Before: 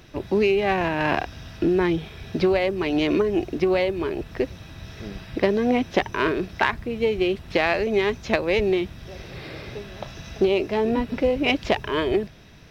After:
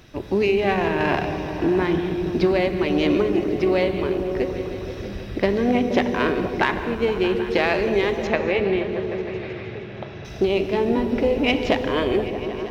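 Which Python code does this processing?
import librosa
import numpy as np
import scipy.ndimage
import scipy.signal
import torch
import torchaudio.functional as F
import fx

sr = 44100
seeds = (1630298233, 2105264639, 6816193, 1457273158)

p1 = fx.cheby1_bandpass(x, sr, low_hz=100.0, high_hz=2600.0, order=2, at=(8.27, 10.25))
p2 = p1 + fx.echo_opening(p1, sr, ms=157, hz=200, octaves=1, feedback_pct=70, wet_db=-3, dry=0)
y = fx.rev_gated(p2, sr, seeds[0], gate_ms=270, shape='flat', drr_db=9.0)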